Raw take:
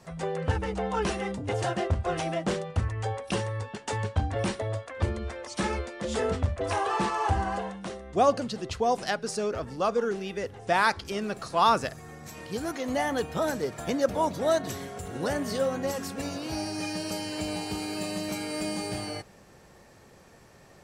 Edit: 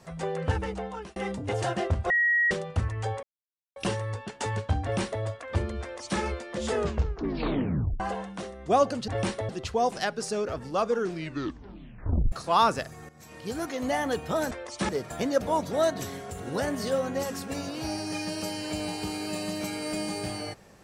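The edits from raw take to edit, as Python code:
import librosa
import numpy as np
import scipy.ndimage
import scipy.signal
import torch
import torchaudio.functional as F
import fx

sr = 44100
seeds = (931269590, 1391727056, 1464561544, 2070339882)

y = fx.edit(x, sr, fx.fade_out_span(start_s=0.6, length_s=0.56),
    fx.bleep(start_s=2.1, length_s=0.41, hz=1900.0, db=-20.0),
    fx.insert_silence(at_s=3.23, length_s=0.53),
    fx.duplicate(start_s=4.29, length_s=0.41, to_s=8.55),
    fx.duplicate(start_s=5.29, length_s=0.38, to_s=13.57),
    fx.tape_stop(start_s=6.21, length_s=1.26),
    fx.tape_stop(start_s=10.05, length_s=1.33),
    fx.fade_in_from(start_s=12.15, length_s=0.48, floor_db=-12.5), tone=tone)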